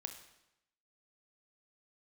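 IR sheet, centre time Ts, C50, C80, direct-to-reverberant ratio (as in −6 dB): 17 ms, 9.0 dB, 11.0 dB, 6.0 dB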